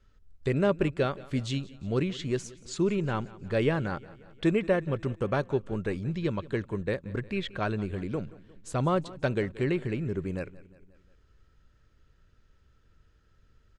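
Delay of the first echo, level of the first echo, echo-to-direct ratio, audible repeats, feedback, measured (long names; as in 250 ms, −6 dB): 178 ms, −20.0 dB, −18.5 dB, 3, 56%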